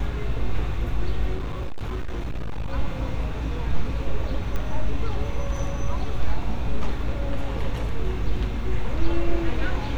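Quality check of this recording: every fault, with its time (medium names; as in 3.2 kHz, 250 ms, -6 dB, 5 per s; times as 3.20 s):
1.36–2.73 s: clipped -24 dBFS
4.56 s: pop -16 dBFS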